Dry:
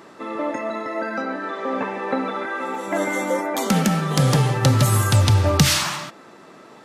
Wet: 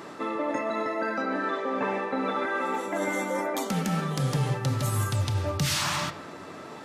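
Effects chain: reverse; compressor 6:1, threshold -29 dBFS, peak gain reduction 17.5 dB; reverse; reverb RT60 1.2 s, pre-delay 7 ms, DRR 11.5 dB; gain +3 dB

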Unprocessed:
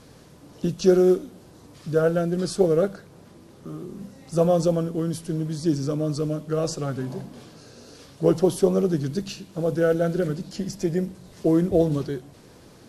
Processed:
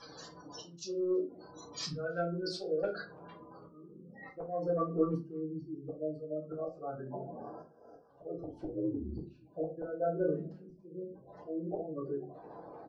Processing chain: spectral gate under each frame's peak -20 dB strong; weighting filter ITU-R 468; 7.08–8.1 spectral delete 1700–4700 Hz; dynamic EQ 160 Hz, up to -3 dB, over -43 dBFS, Q 1.6; auto swell 0.742 s; 2.23–2.83 compressor 3:1, threshold -40 dBFS, peak gain reduction 7.5 dB; 8.38–9.44 frequency shift -63 Hz; soft clip -23.5 dBFS, distortion -29 dB; low-pass sweep 7700 Hz -> 750 Hz, 1.56–5.55; speakerphone echo 0.33 s, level -30 dB; reverb RT60 0.30 s, pre-delay 4 ms, DRR -7.5 dB; gain -6 dB

